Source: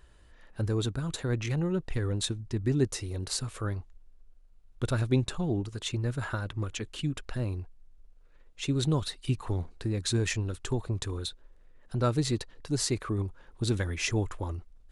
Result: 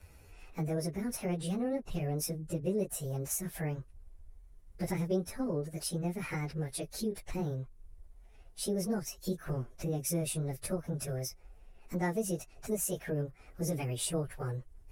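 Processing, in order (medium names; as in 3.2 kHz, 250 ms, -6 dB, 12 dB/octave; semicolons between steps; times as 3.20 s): frequency-domain pitch shifter +6.5 st; fifteen-band graphic EQ 400 Hz +5 dB, 4 kHz -4 dB, 10 kHz +9 dB; compression 2:1, threshold -44 dBFS, peak gain reduction 13.5 dB; trim +5.5 dB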